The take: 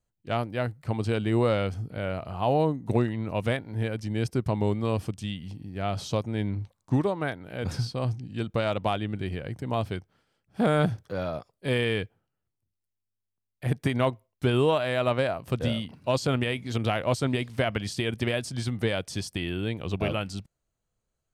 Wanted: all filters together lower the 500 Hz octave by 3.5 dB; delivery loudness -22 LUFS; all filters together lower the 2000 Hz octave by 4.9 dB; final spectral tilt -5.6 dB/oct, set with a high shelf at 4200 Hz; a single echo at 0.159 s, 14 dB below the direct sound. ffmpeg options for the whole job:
-af "equalizer=f=500:t=o:g=-4,equalizer=f=2k:t=o:g=-8.5,highshelf=f=4.2k:g=9,aecho=1:1:159:0.2,volume=8dB"

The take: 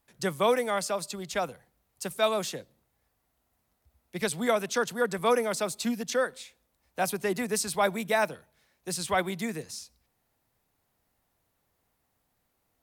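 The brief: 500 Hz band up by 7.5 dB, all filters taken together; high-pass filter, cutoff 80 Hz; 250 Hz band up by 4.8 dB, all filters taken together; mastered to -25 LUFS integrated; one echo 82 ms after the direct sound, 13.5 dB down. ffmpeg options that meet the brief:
-af "highpass=80,equalizer=f=250:t=o:g=4,equalizer=f=500:t=o:g=8,aecho=1:1:82:0.211,volume=-1.5dB"

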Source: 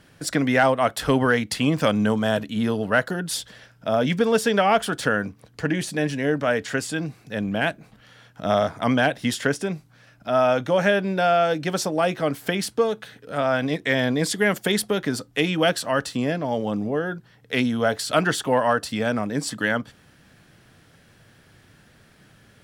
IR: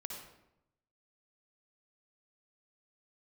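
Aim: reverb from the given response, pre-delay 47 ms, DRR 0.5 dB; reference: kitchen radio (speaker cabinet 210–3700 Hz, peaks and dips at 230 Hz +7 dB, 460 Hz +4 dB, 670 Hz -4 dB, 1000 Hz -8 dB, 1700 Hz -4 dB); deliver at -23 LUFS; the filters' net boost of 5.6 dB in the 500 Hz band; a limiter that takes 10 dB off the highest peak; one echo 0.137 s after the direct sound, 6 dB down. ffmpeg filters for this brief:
-filter_complex "[0:a]equalizer=f=500:t=o:g=6,alimiter=limit=-14.5dB:level=0:latency=1,aecho=1:1:137:0.501,asplit=2[a][b];[1:a]atrim=start_sample=2205,adelay=47[c];[b][c]afir=irnorm=-1:irlink=0,volume=1dB[d];[a][d]amix=inputs=2:normalize=0,highpass=210,equalizer=f=230:t=q:w=4:g=7,equalizer=f=460:t=q:w=4:g=4,equalizer=f=670:t=q:w=4:g=-4,equalizer=f=1k:t=q:w=4:g=-8,equalizer=f=1.7k:t=q:w=4:g=-4,lowpass=f=3.7k:w=0.5412,lowpass=f=3.7k:w=1.3066,volume=-2.5dB"

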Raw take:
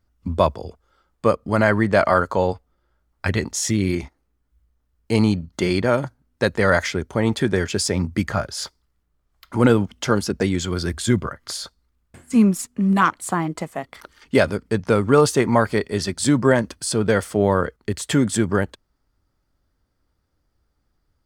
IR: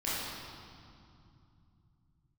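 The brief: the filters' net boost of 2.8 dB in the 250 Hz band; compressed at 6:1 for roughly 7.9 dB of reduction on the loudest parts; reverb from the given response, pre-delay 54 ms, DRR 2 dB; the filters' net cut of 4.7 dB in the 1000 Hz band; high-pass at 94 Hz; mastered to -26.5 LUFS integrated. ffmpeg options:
-filter_complex "[0:a]highpass=94,equalizer=f=250:t=o:g=4,equalizer=f=1k:t=o:g=-6.5,acompressor=threshold=-16dB:ratio=6,asplit=2[a][b];[1:a]atrim=start_sample=2205,adelay=54[c];[b][c]afir=irnorm=-1:irlink=0,volume=-9.5dB[d];[a][d]amix=inputs=2:normalize=0,volume=-5dB"

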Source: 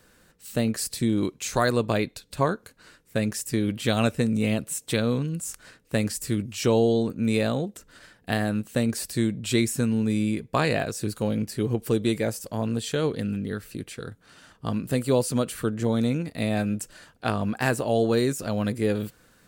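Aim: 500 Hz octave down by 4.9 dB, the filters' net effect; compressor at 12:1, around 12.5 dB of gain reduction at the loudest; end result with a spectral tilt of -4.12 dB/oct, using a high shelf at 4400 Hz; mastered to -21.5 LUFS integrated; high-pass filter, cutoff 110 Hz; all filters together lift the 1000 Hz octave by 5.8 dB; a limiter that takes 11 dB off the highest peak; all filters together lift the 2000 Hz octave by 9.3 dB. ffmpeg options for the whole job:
-af "highpass=110,equalizer=f=500:t=o:g=-8.5,equalizer=f=1k:t=o:g=7.5,equalizer=f=2k:t=o:g=9,highshelf=f=4.4k:g=4.5,acompressor=threshold=-26dB:ratio=12,volume=12dB,alimiter=limit=-9dB:level=0:latency=1"

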